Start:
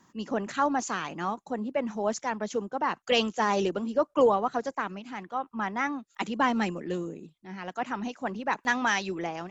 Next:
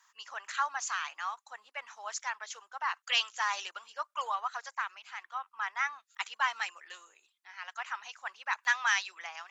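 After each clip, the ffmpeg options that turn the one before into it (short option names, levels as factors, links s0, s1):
-af "highpass=f=1100:w=0.5412,highpass=f=1100:w=1.3066"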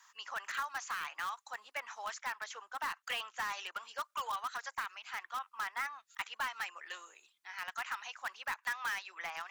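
-filter_complex "[0:a]acrossover=split=1200|2600[s0][s1][s2];[s0]acompressor=threshold=0.00447:ratio=4[s3];[s1]acompressor=threshold=0.00891:ratio=4[s4];[s2]acompressor=threshold=0.00178:ratio=4[s5];[s3][s4][s5]amix=inputs=3:normalize=0,asplit=2[s6][s7];[s7]aeval=exprs='(mod(53.1*val(0)+1,2)-1)/53.1':c=same,volume=0.316[s8];[s6][s8]amix=inputs=2:normalize=0,volume=1.19"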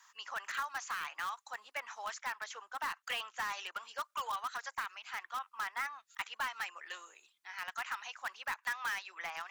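-af anull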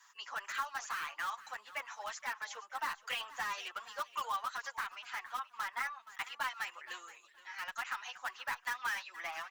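-filter_complex "[0:a]aecho=1:1:472|944:0.141|0.0339,asplit=2[s0][s1];[s1]adelay=7.4,afreqshift=-0.62[s2];[s0][s2]amix=inputs=2:normalize=1,volume=1.41"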